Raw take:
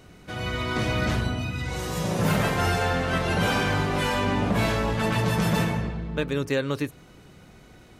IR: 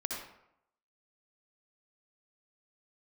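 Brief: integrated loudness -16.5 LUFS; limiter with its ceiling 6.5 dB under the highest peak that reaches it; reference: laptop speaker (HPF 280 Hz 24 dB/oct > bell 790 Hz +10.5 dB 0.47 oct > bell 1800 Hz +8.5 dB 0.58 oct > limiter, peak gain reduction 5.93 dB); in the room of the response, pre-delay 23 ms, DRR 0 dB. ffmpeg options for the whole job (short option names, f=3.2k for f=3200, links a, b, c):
-filter_complex "[0:a]alimiter=limit=-19dB:level=0:latency=1,asplit=2[a][b];[1:a]atrim=start_sample=2205,adelay=23[c];[b][c]afir=irnorm=-1:irlink=0,volume=-3dB[d];[a][d]amix=inputs=2:normalize=0,highpass=f=280:w=0.5412,highpass=f=280:w=1.3066,equalizer=f=790:t=o:w=0.47:g=10.5,equalizer=f=1.8k:t=o:w=0.58:g=8.5,volume=8.5dB,alimiter=limit=-7dB:level=0:latency=1"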